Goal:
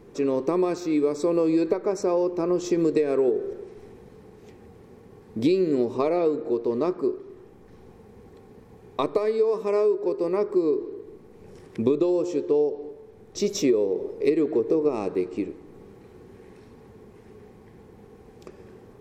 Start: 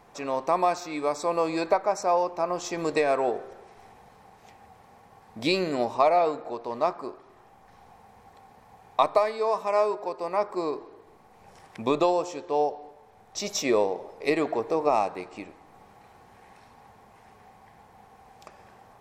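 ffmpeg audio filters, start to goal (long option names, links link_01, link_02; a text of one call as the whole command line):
ffmpeg -i in.wav -af "lowshelf=frequency=540:width_type=q:width=3:gain=10,acompressor=threshold=-17dB:ratio=6,volume=-1.5dB" out.wav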